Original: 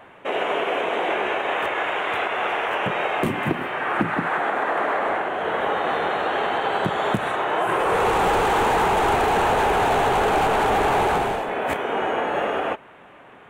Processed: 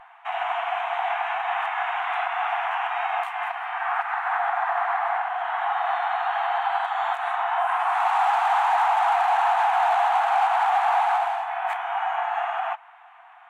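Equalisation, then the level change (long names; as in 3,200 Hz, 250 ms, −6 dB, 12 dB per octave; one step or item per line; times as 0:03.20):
linear-phase brick-wall high-pass 670 Hz
spectral tilt −4 dB per octave
0.0 dB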